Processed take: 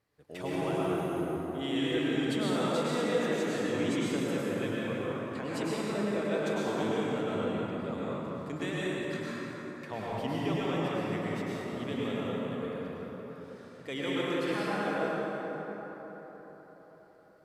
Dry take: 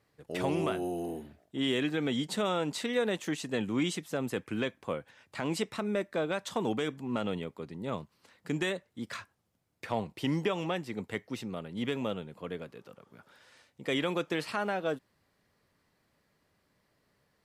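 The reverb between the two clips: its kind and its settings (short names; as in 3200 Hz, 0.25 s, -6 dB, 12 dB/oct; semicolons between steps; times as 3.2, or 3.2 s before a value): plate-style reverb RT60 4.7 s, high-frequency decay 0.45×, pre-delay 90 ms, DRR -8 dB; gain -7.5 dB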